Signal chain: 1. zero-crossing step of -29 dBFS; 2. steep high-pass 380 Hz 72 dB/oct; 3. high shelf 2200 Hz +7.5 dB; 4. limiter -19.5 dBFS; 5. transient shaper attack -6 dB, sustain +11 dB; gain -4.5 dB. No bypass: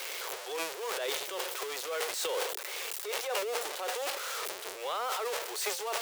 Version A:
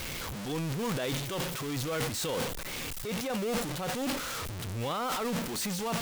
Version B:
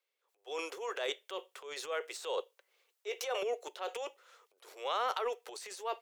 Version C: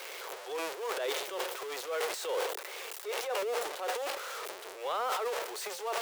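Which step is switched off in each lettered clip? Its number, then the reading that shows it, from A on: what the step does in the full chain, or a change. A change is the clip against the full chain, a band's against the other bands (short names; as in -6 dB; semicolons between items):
2, 250 Hz band +19.5 dB; 1, distortion -7 dB; 3, 8 kHz band -6.0 dB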